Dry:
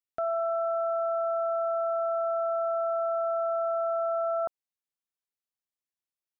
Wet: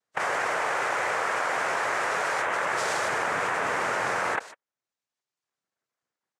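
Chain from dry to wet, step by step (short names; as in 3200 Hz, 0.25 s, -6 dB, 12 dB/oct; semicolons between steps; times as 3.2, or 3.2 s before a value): tracing distortion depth 0.049 ms; Doppler pass-by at 2.7, 25 m/s, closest 2.1 m; spectral gate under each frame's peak -30 dB strong; speakerphone echo 0.15 s, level -27 dB; formant shift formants +5 st; band shelf 630 Hz +12 dB 2.4 oct; reverb removal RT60 1 s; formant-preserving pitch shift +2 st; noise vocoder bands 3; fast leveller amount 100%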